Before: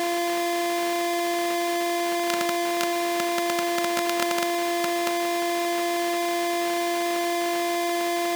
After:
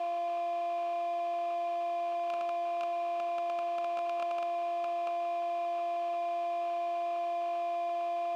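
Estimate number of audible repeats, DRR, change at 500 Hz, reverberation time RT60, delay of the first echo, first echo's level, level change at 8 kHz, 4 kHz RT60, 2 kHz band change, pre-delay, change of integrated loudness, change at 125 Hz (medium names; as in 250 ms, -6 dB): no echo, no reverb, -6.0 dB, no reverb, no echo, no echo, under -30 dB, no reverb, -19.5 dB, no reverb, -9.0 dB, no reading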